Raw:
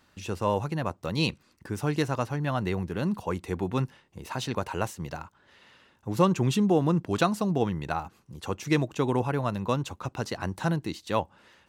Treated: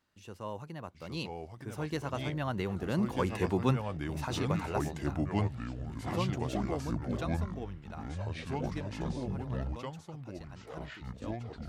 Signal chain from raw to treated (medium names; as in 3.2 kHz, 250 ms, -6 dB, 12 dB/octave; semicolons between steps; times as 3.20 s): Doppler pass-by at 3.52 s, 10 m/s, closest 6.4 m; ever faster or slower copies 740 ms, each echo -4 st, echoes 3